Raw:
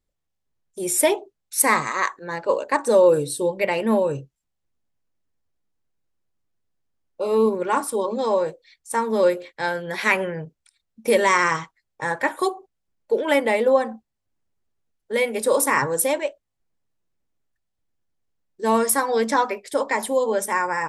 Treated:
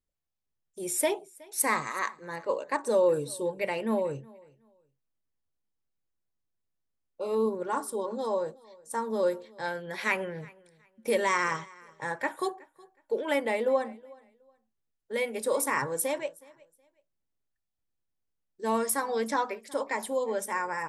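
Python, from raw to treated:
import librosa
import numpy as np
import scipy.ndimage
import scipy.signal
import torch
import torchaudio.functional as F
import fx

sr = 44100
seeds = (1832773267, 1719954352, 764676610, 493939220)

y = fx.peak_eq(x, sr, hz=2400.0, db=-10.5, octaves=0.55, at=(7.35, 9.66))
y = fx.echo_feedback(y, sr, ms=369, feedback_pct=23, wet_db=-24.0)
y = y * 10.0 ** (-8.5 / 20.0)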